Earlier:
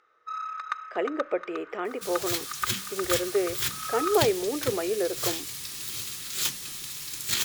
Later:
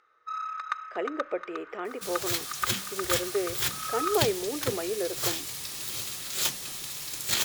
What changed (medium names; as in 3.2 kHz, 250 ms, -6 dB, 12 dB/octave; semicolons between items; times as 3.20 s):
speech -3.5 dB; second sound: add peaking EQ 650 Hz +9.5 dB 1 oct